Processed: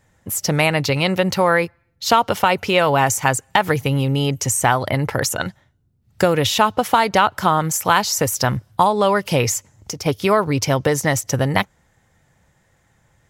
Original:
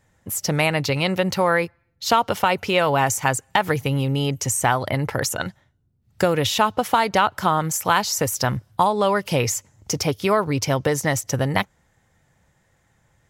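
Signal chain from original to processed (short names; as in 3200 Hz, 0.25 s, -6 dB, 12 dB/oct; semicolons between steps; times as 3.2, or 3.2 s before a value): 9.57–10.06 compressor 10:1, threshold -29 dBFS, peak gain reduction 10.5 dB; gain +3 dB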